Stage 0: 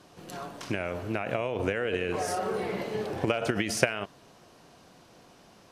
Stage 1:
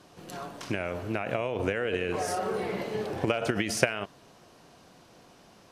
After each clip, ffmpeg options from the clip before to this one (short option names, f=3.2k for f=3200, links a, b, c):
-af anull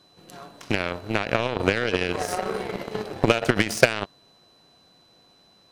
-af "aeval=exprs='val(0)+0.00251*sin(2*PI*4000*n/s)':c=same,aeval=exprs='0.596*sin(PI/2*1.78*val(0)/0.596)':c=same,aeval=exprs='0.631*(cos(1*acos(clip(val(0)/0.631,-1,1)))-cos(1*PI/2))+0.0891*(cos(3*acos(clip(val(0)/0.631,-1,1)))-cos(3*PI/2))+0.0398*(cos(7*acos(clip(val(0)/0.631,-1,1)))-cos(7*PI/2))':c=same,volume=3dB"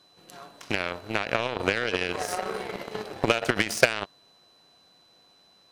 -af "lowshelf=f=410:g=-7,volume=-1dB"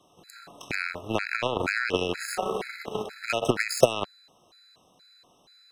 -filter_complex "[0:a]acrossover=split=370|1500|4600[a][b][c][d];[c]alimiter=limit=-20.5dB:level=0:latency=1:release=62[e];[a][b][e][d]amix=inputs=4:normalize=0,afftfilt=real='re*gt(sin(2*PI*2.1*pts/sr)*(1-2*mod(floor(b*sr/1024/1300),2)),0)':imag='im*gt(sin(2*PI*2.1*pts/sr)*(1-2*mod(floor(b*sr/1024/1300),2)),0)':win_size=1024:overlap=0.75,volume=3.5dB"